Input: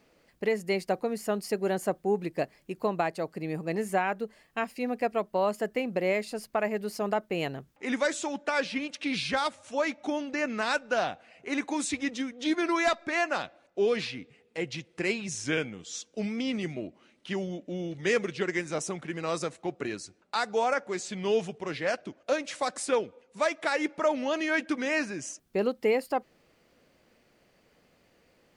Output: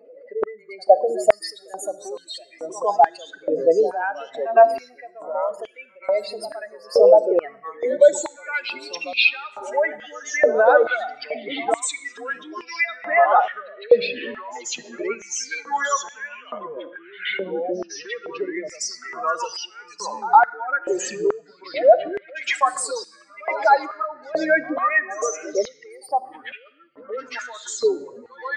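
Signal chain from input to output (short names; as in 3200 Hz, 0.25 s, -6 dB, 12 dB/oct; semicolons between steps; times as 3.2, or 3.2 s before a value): spectral contrast raised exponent 3.1; pre-echo 0.112 s -18.5 dB; echoes that change speed 0.59 s, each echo -3 st, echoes 3, each echo -6 dB; reverb RT60 0.75 s, pre-delay 25 ms, DRR 16 dB; in parallel at 0 dB: compressor, threshold -34 dBFS, peak gain reduction 12.5 dB; on the sum: stepped high-pass 2.3 Hz 520–2600 Hz; gain +5.5 dB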